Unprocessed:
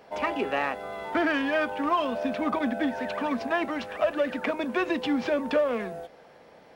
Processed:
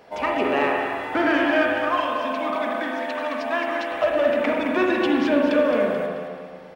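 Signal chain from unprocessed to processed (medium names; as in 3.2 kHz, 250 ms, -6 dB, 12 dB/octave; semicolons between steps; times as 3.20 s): 1.77–3.92 s: high-pass 820 Hz 6 dB/octave; feedback delay 217 ms, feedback 40%, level -8 dB; spring tank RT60 1.7 s, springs 38/57 ms, chirp 60 ms, DRR 0 dB; trim +2.5 dB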